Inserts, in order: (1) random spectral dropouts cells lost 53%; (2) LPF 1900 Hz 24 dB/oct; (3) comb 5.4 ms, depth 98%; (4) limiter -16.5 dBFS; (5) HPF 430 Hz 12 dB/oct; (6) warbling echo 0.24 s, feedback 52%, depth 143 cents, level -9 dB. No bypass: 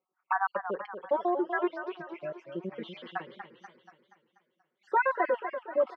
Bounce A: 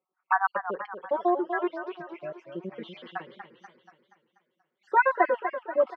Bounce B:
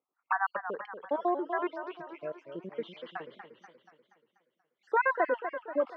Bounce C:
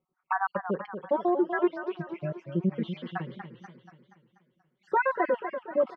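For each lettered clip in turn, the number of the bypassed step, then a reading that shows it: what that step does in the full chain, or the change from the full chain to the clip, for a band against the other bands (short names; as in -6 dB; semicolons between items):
4, crest factor change +3.0 dB; 3, 125 Hz band -3.5 dB; 5, 125 Hz band +15.5 dB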